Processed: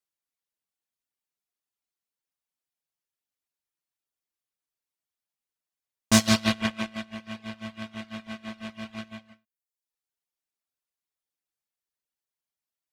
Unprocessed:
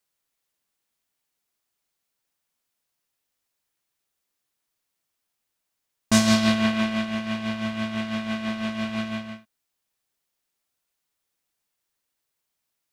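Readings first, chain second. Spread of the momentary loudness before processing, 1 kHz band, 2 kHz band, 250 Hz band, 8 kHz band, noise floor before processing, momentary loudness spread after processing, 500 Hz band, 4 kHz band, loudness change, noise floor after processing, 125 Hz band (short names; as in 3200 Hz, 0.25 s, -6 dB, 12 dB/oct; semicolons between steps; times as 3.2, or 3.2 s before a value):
12 LU, -4.0 dB, -3.5 dB, -5.5 dB, +0.5 dB, -81 dBFS, 18 LU, -5.0 dB, -2.0 dB, -1.5 dB, under -85 dBFS, -2.5 dB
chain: added harmonics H 7 -20 dB, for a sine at -6.5 dBFS; reverb removal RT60 0.72 s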